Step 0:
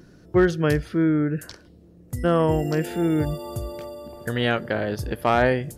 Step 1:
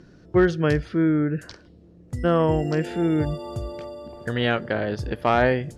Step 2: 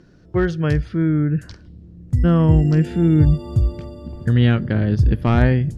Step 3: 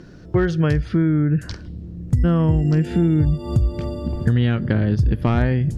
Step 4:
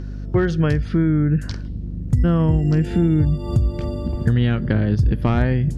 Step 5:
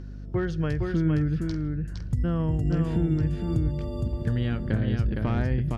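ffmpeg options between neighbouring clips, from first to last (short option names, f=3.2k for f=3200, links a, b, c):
-af "lowpass=5.8k"
-af "asubboost=boost=9.5:cutoff=210,volume=-1dB"
-af "acompressor=threshold=-23dB:ratio=5,volume=8dB"
-af "aeval=exprs='val(0)+0.0398*(sin(2*PI*50*n/s)+sin(2*PI*2*50*n/s)/2+sin(2*PI*3*50*n/s)/3+sin(2*PI*4*50*n/s)/4+sin(2*PI*5*50*n/s)/5)':c=same"
-af "aecho=1:1:462:0.668,volume=-9dB"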